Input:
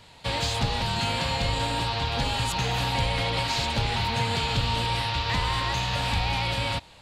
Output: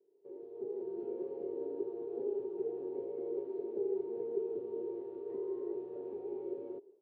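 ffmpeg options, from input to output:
-af "dynaudnorm=f=460:g=3:m=12dB,asuperpass=centerf=390:order=4:qfactor=7,volume=2.5dB"

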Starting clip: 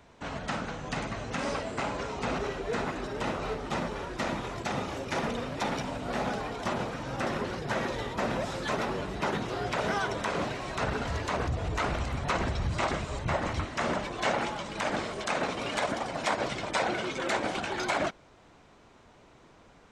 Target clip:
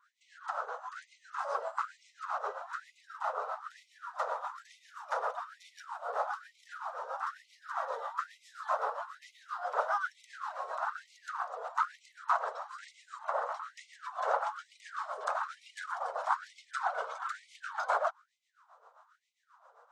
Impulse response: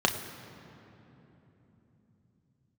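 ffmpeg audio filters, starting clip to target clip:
-filter_complex "[0:a]highshelf=f=1.7k:t=q:w=3:g=-10,acrossover=split=420[a][b];[a]aeval=exprs='val(0)*(1-0.7/2+0.7/2*cos(2*PI*7.5*n/s))':c=same[c];[b]aeval=exprs='val(0)*(1-0.7/2-0.7/2*cos(2*PI*7.5*n/s))':c=same[d];[c][d]amix=inputs=2:normalize=0,afftfilt=real='re*gte(b*sr/1024,420*pow(2000/420,0.5+0.5*sin(2*PI*1.1*pts/sr)))':imag='im*gte(b*sr/1024,420*pow(2000/420,0.5+0.5*sin(2*PI*1.1*pts/sr)))':win_size=1024:overlap=0.75"

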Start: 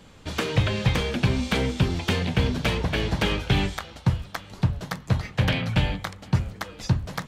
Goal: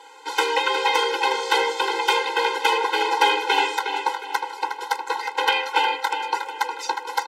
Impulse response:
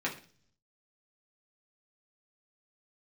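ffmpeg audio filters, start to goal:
-filter_complex "[0:a]highpass=f=720:t=q:w=4.9,asplit=2[a][b];[b]adelay=361,lowpass=f=4.2k:p=1,volume=-6.5dB,asplit=2[c][d];[d]adelay=361,lowpass=f=4.2k:p=1,volume=0.41,asplit=2[e][f];[f]adelay=361,lowpass=f=4.2k:p=1,volume=0.41,asplit=2[g][h];[h]adelay=361,lowpass=f=4.2k:p=1,volume=0.41,asplit=2[i][j];[j]adelay=361,lowpass=f=4.2k:p=1,volume=0.41[k];[a][c][e][g][i][k]amix=inputs=6:normalize=0,afftfilt=real='re*eq(mod(floor(b*sr/1024/270),2),1)':imag='im*eq(mod(floor(b*sr/1024/270),2),1)':win_size=1024:overlap=0.75,volume=8.5dB"

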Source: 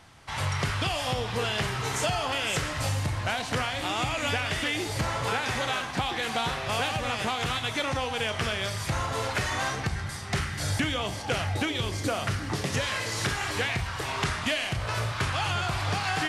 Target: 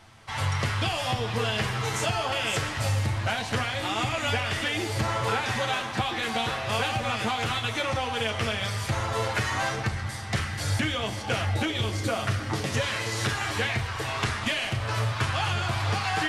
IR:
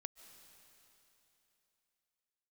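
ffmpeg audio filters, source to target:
-filter_complex "[0:a]asplit=2[a][b];[1:a]atrim=start_sample=2205,lowpass=4.5k,adelay=9[c];[b][c]afir=irnorm=-1:irlink=0,volume=2.5dB[d];[a][d]amix=inputs=2:normalize=0,volume=-1dB"

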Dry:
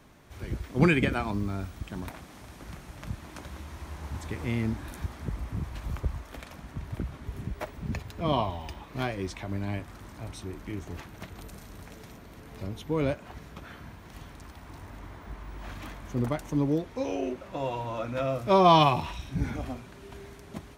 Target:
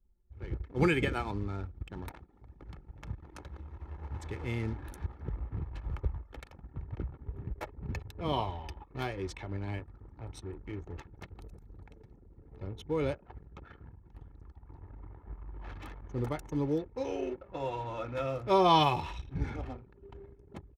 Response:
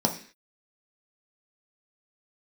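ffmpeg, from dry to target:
-af "anlmdn=0.158,aecho=1:1:2.3:0.44,volume=-4.5dB"

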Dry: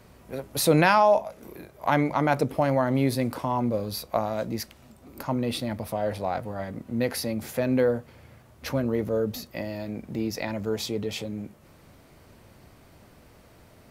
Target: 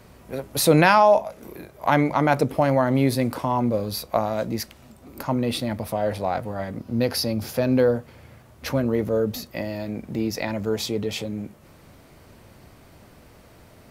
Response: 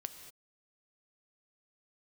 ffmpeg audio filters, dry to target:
-filter_complex "[0:a]asettb=1/sr,asplit=3[a][b][c];[a]atrim=end=6.784[d];[b]atrim=start=6.78:end=7.96,asetpts=PTS-STARTPTS,afade=t=in:d=0.004:c=qsin,afade=t=out:st=1.176:d=0.004:c=qsin,equalizer=f=100:t=o:w=0.33:g=7,equalizer=f=2k:t=o:w=0.33:g=-6,equalizer=f=5k:t=o:w=0.33:g=8,equalizer=f=8k:t=o:w=0.33:g=-6[e];[c]atrim=start=7.956[f];[d][e]acrossfade=d=0.004:c1=hsin:c2=qsin[g];[g][f]acrossfade=d=0.004:c1=qsin:c2=hsin,volume=3.5dB"

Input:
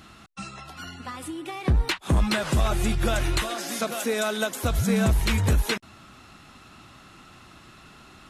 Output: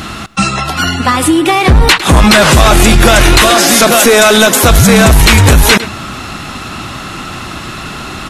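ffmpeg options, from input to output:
-filter_complex "[0:a]asplit=2[a][b];[b]adelay=105,volume=-20dB,highshelf=f=4k:g=-2.36[c];[a][c]amix=inputs=2:normalize=0,apsyclip=27.5dB,volume=-1.5dB"

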